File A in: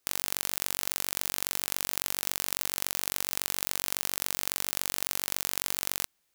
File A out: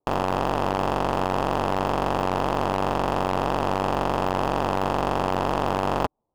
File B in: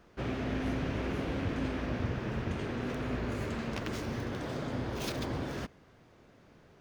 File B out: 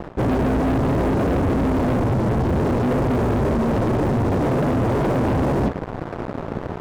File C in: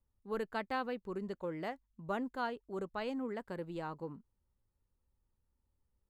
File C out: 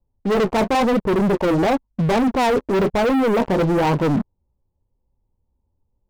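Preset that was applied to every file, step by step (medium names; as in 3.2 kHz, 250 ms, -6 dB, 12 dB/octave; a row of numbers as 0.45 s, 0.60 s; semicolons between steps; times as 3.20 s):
flange 0.99 Hz, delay 5.5 ms, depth 9.9 ms, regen -39%; steep low-pass 1 kHz 48 dB/octave; waveshaping leveller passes 5; reverse; compression 12:1, threshold -40 dBFS; reverse; peak normalisation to -12 dBFS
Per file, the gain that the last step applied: +21.5 dB, +21.5 dB, +23.5 dB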